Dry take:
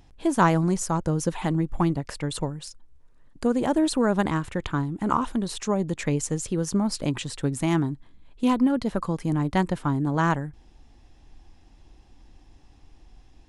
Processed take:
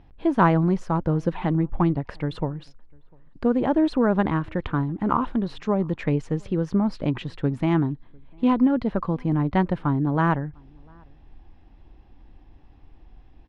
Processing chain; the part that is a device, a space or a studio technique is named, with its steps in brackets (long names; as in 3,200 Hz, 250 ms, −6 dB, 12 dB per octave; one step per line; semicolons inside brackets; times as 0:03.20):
shout across a valley (high-frequency loss of the air 340 metres; slap from a distant wall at 120 metres, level −30 dB)
level +2.5 dB